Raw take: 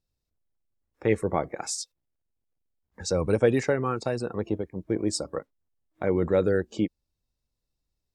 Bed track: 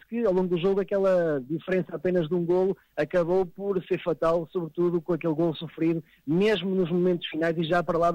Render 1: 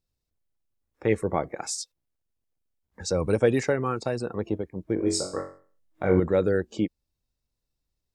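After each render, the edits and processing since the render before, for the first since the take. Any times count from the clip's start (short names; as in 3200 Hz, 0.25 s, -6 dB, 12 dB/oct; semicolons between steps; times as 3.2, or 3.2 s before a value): 3.2–3.98 high shelf 4900 Hz +3.5 dB; 4.95–6.2 flutter echo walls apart 3.7 m, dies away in 0.42 s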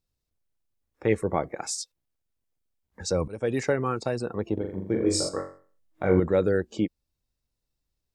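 3.28–3.7 fade in, from -24 dB; 4.53–5.29 flutter echo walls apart 7.1 m, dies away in 0.55 s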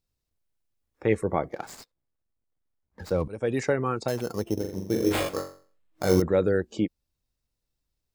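1.5–3.29 median filter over 15 samples; 4.08–6.22 sample-rate reducer 5800 Hz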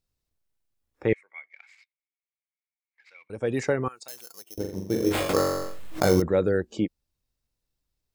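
1.13–3.3 ladder band-pass 2300 Hz, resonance 85%; 3.88–4.58 differentiator; 5.29–6.13 fast leveller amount 70%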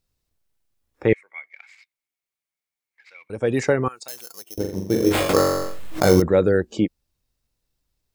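gain +5.5 dB; limiter -3 dBFS, peak gain reduction 2 dB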